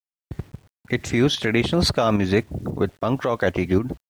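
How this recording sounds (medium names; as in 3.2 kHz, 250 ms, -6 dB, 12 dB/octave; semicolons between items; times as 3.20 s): a quantiser's noise floor 10-bit, dither none; tremolo saw up 3.7 Hz, depth 55%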